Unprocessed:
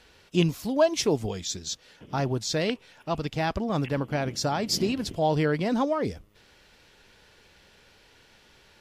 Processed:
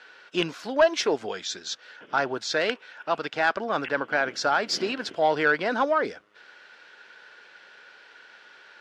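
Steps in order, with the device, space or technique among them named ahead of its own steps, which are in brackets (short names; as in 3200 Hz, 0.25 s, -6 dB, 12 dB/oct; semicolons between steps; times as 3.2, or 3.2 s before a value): intercom (BPF 440–4500 Hz; bell 1500 Hz +12 dB 0.43 oct; soft clip -14 dBFS, distortion -19 dB); gain +4 dB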